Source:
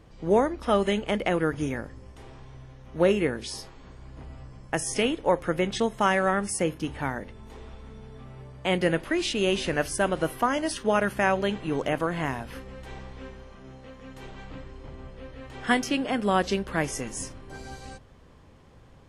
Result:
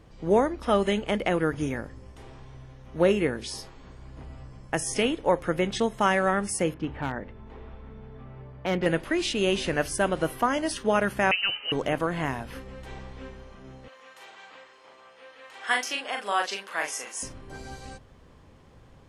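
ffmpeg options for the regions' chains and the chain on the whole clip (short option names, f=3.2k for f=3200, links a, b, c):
-filter_complex "[0:a]asettb=1/sr,asplit=3[a][b][c];[a]atrim=end=6.744[d];[b]atrim=start=6.74:end=8.86,asetpts=PTS-STARTPTS,afade=t=in:d=0.004:c=qsin,afade=t=out:st=2.116:d=0.004:c=qsin,lowpass=2.4k,asoftclip=type=hard:threshold=-20.5dB[e];[c]atrim=start=8.856[f];[d][e]acrossfade=d=0.004:c1=hsin:c2=qsin[g];[g][f]acrossfade=d=0.004:c1=qsin:c2=hsin,asettb=1/sr,asplit=3[h][i][j];[h]atrim=end=11.314[k];[i]atrim=start=11.31:end=11.72,asetpts=PTS-STARTPTS,afade=t=in:d=0.004:c=qsin,afade=t=out:st=0.406:d=0.004:c=qsin,highpass=180,lowpass=f=2.7k:t=q:w=0.5098,lowpass=f=2.7k:t=q:w=0.6013,lowpass=f=2.7k:t=q:w=0.9,lowpass=f=2.7k:t=q:w=2.563,afreqshift=-3200[l];[j]atrim=start=11.716[m];[k][l]acrossfade=d=0.004:c1=hsin:c2=qsin[n];[n][m]acrossfade=d=0.004:c1=qsin:c2=hsin,asettb=1/sr,asplit=3[o][p][q];[o]atrim=end=13.884[r];[p]atrim=start=13.88:end=17.23,asetpts=PTS-STARTPTS,afade=t=in:d=0.004:c=qsin,afade=t=out:st=3.346:d=0.004:c=qsin,highpass=800,asplit=2[s][t];[t]adelay=40,volume=-4dB[u];[s][u]amix=inputs=2:normalize=0,atrim=end_sample=147735[v];[q]atrim=start=17.226[w];[r][v]acrossfade=d=0.004:c1=hsin:c2=qsin[x];[x][w]acrossfade=d=0.004:c1=qsin:c2=hsin"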